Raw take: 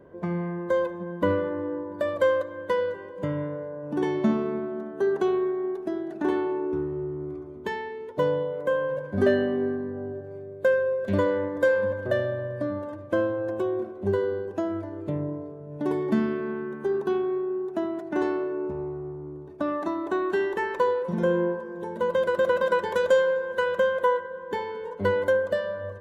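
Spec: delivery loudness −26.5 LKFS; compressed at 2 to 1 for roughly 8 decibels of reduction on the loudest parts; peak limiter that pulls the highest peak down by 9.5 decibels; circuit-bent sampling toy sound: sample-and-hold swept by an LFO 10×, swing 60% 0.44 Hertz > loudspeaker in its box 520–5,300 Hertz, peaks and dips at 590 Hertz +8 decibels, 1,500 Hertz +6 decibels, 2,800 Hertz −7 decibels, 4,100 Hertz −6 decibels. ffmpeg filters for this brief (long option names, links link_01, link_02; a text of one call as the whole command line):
ffmpeg -i in.wav -af "acompressor=threshold=-32dB:ratio=2,alimiter=level_in=2.5dB:limit=-24dB:level=0:latency=1,volume=-2.5dB,acrusher=samples=10:mix=1:aa=0.000001:lfo=1:lforange=6:lforate=0.44,highpass=520,equalizer=frequency=590:width_type=q:width=4:gain=8,equalizer=frequency=1500:width_type=q:width=4:gain=6,equalizer=frequency=2800:width_type=q:width=4:gain=-7,equalizer=frequency=4100:width_type=q:width=4:gain=-6,lowpass=frequency=5300:width=0.5412,lowpass=frequency=5300:width=1.3066,volume=9dB" out.wav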